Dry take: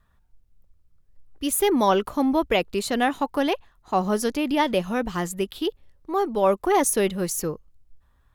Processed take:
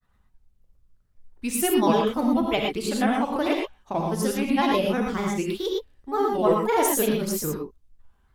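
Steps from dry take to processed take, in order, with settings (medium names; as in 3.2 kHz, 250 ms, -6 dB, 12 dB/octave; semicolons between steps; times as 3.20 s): granulator, spray 22 ms, pitch spread up and down by 3 st; gated-style reverb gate 140 ms rising, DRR 0.5 dB; trim -2 dB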